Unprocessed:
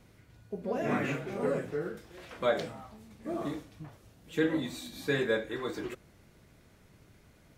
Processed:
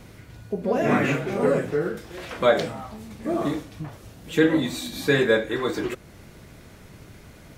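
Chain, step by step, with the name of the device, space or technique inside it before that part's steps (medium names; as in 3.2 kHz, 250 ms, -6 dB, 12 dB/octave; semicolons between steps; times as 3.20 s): parallel compression (in parallel at -3.5 dB: compression, threshold -49 dBFS, peak gain reduction 24 dB); on the sum: trim +9 dB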